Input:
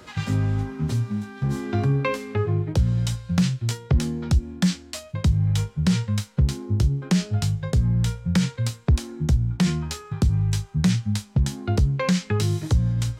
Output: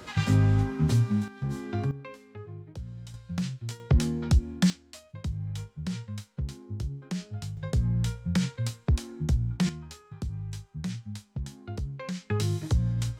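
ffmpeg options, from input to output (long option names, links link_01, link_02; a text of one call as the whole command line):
ffmpeg -i in.wav -af "asetnsamples=nb_out_samples=441:pad=0,asendcmd='1.28 volume volume -7dB;1.91 volume volume -19dB;3.14 volume volume -10.5dB;3.8 volume volume -2dB;4.7 volume volume -13dB;7.57 volume volume -5.5dB;9.69 volume volume -14dB;12.3 volume volume -5dB',volume=1dB" out.wav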